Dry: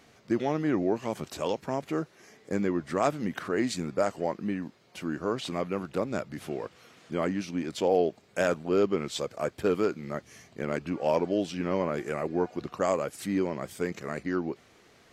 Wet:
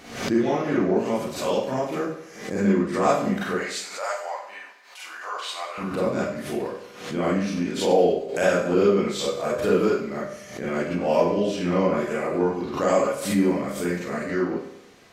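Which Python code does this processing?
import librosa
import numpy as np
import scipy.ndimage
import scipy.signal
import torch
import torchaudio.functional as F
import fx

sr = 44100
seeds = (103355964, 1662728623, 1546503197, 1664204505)

y = fx.highpass(x, sr, hz=750.0, slope=24, at=(3.54, 5.78))
y = fx.echo_feedback(y, sr, ms=95, feedback_pct=46, wet_db=-13.0)
y = fx.rev_schroeder(y, sr, rt60_s=0.43, comb_ms=31, drr_db=-8.0)
y = fx.pre_swell(y, sr, db_per_s=86.0)
y = y * 10.0 ** (-3.0 / 20.0)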